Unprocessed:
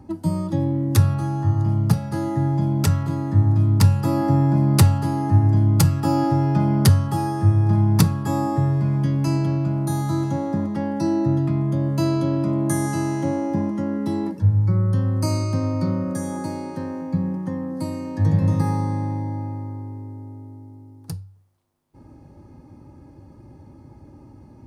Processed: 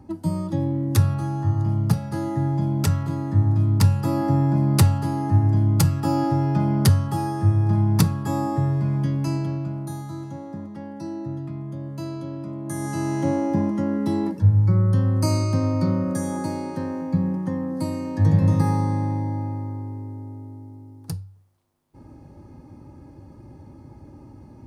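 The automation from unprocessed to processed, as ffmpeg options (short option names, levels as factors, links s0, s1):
-af "volume=3.16,afade=t=out:st=9.02:d=1.08:silence=0.354813,afade=t=in:st=12.64:d=0.65:silence=0.251189"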